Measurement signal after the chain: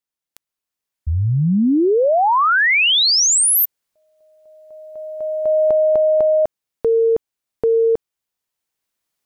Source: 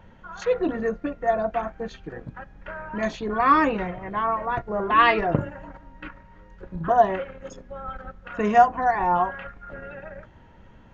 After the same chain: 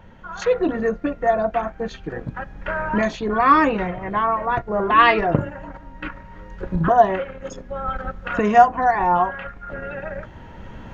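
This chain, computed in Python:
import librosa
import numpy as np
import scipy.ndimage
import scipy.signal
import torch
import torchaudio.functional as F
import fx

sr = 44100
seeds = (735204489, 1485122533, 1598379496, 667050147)

y = fx.recorder_agc(x, sr, target_db=-15.0, rise_db_per_s=6.2, max_gain_db=30)
y = y * 10.0 ** (3.5 / 20.0)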